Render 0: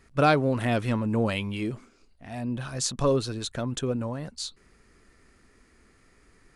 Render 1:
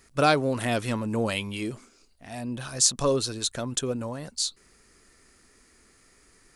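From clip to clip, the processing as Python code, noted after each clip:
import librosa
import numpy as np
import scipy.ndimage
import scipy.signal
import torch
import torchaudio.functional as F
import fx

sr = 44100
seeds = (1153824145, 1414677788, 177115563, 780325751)

y = fx.bass_treble(x, sr, bass_db=-4, treble_db=10)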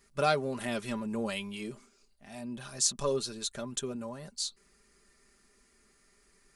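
y = x + 0.64 * np.pad(x, (int(5.0 * sr / 1000.0), 0))[:len(x)]
y = y * librosa.db_to_amplitude(-8.5)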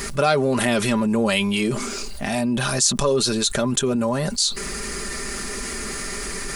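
y = fx.env_flatten(x, sr, amount_pct=70)
y = y * librosa.db_to_amplitude(7.0)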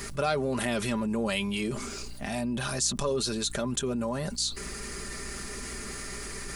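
y = fx.add_hum(x, sr, base_hz=60, snr_db=16)
y = y * librosa.db_to_amplitude(-9.0)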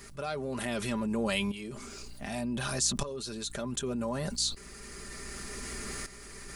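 y = fx.tremolo_shape(x, sr, shape='saw_up', hz=0.66, depth_pct=75)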